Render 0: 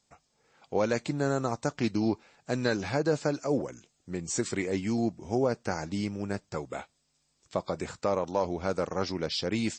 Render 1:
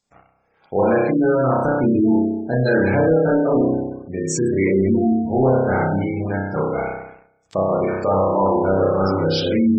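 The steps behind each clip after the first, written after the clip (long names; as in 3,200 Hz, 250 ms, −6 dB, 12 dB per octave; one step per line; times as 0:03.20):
spring reverb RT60 1.1 s, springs 31 ms, chirp 80 ms, DRR −6 dB
leveller curve on the samples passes 2
gate on every frequency bin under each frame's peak −20 dB strong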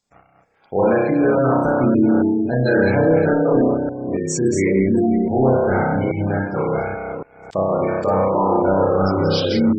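delay that plays each chunk backwards 278 ms, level −6 dB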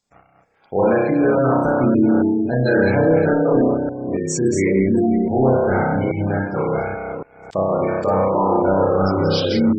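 no processing that can be heard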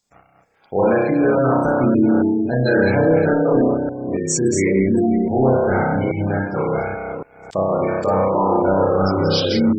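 high-shelf EQ 4,800 Hz +7 dB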